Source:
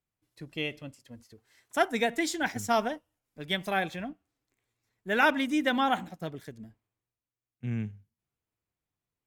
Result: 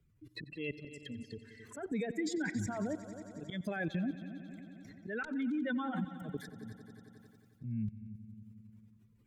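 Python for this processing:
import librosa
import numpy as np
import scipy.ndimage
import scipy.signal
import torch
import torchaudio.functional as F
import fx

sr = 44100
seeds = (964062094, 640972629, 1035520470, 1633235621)

p1 = fx.spec_expand(x, sr, power=2.1)
p2 = fx.level_steps(p1, sr, step_db=20)
p3 = fx.cheby_harmonics(p2, sr, harmonics=(5, 6, 7, 8), levels_db=(-9, -22, -22, -28), full_scale_db=-12.5)
p4 = fx.auto_swell(p3, sr, attack_ms=239.0)
p5 = fx.peak_eq(p4, sr, hz=750.0, db=-13.0, octaves=0.53)
p6 = p5 + fx.echo_heads(p5, sr, ms=90, heads='all three', feedback_pct=45, wet_db=-19.0, dry=0)
p7 = fx.band_squash(p6, sr, depth_pct=70)
y = p7 * librosa.db_to_amplitude(1.5)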